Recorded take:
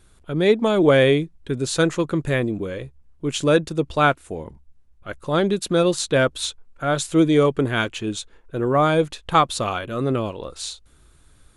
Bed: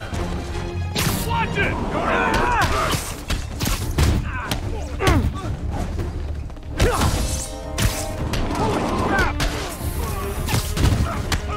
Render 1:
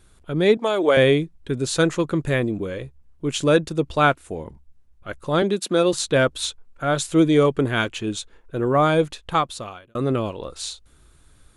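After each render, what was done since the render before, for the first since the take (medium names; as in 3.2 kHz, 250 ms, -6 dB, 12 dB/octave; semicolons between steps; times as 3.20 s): 0.57–0.97 s: high-pass 420 Hz; 5.42–5.93 s: high-pass 190 Hz 24 dB/octave; 9.03–9.95 s: fade out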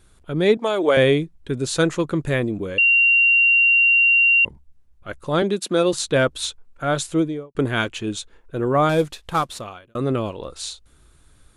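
2.78–4.45 s: bleep 2.76 kHz -12 dBFS; 6.98–7.55 s: studio fade out; 8.89–9.61 s: CVSD coder 64 kbps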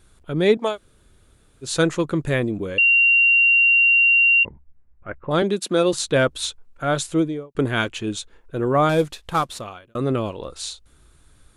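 0.73–1.66 s: room tone, crossfade 0.10 s; 4.43–5.31 s: steep low-pass 2.3 kHz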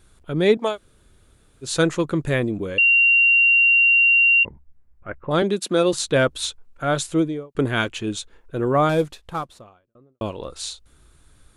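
8.65–10.21 s: studio fade out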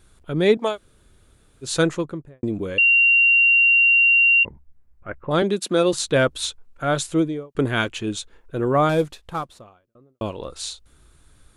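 1.77–2.43 s: studio fade out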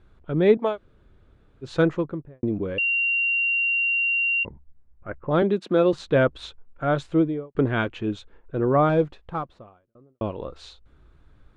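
low-pass 3.6 kHz 12 dB/octave; treble shelf 2.3 kHz -11 dB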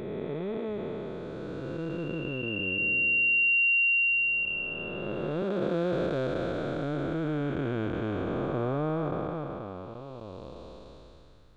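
spectral blur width 1060 ms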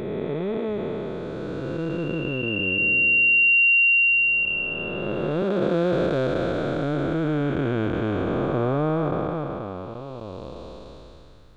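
trim +6.5 dB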